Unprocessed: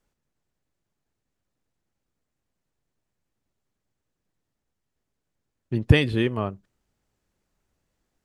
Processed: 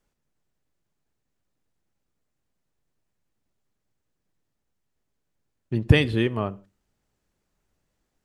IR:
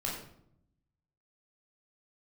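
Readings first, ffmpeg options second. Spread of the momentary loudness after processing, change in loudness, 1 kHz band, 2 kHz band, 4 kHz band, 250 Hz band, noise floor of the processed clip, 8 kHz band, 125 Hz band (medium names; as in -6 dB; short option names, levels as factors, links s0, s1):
12 LU, 0.0 dB, 0.0 dB, 0.0 dB, 0.0 dB, 0.0 dB, -79 dBFS, no reading, 0.0 dB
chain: -filter_complex "[0:a]asplit=2[s0][s1];[1:a]atrim=start_sample=2205,afade=t=out:st=0.21:d=0.01,atrim=end_sample=9702,adelay=5[s2];[s1][s2]afir=irnorm=-1:irlink=0,volume=0.075[s3];[s0][s3]amix=inputs=2:normalize=0"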